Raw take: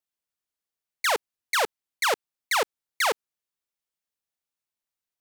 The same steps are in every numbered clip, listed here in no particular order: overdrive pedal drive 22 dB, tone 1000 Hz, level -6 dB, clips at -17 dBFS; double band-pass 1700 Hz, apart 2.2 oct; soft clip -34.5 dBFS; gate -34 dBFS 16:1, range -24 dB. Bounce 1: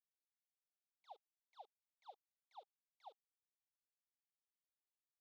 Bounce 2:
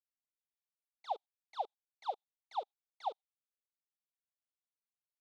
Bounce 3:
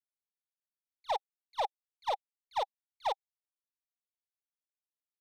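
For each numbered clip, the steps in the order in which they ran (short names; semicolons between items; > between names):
soft clip > double band-pass > gate > overdrive pedal; gate > soft clip > overdrive pedal > double band-pass; double band-pass > soft clip > overdrive pedal > gate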